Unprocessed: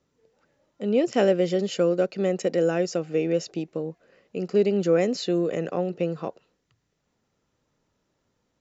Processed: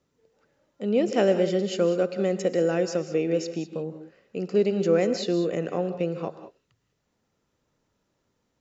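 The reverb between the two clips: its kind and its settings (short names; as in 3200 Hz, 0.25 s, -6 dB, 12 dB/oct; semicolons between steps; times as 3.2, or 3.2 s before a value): non-linear reverb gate 0.22 s rising, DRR 10 dB; gain -1 dB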